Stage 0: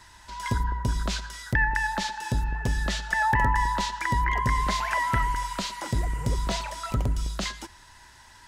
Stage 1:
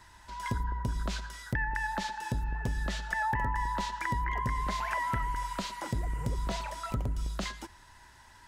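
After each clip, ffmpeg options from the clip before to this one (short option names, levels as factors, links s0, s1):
-af "equalizer=f=5500:t=o:w=2.5:g=-5,acompressor=threshold=0.0501:ratio=3,volume=0.75"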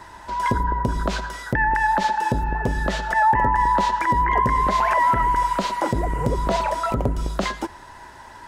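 -af "equalizer=f=510:t=o:w=3:g=13,alimiter=limit=0.141:level=0:latency=1:release=56,volume=2.11"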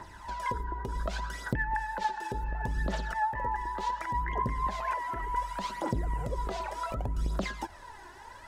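-af "acompressor=threshold=0.0501:ratio=3,aphaser=in_gain=1:out_gain=1:delay=2.9:decay=0.57:speed=0.68:type=triangular,volume=0.422"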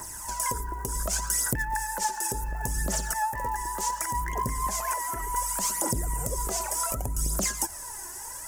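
-filter_complex "[0:a]asplit=2[s0][s1];[s1]asoftclip=type=tanh:threshold=0.0251,volume=0.266[s2];[s0][s2]amix=inputs=2:normalize=0,aexciter=amount=8.8:drive=9.7:freq=5900"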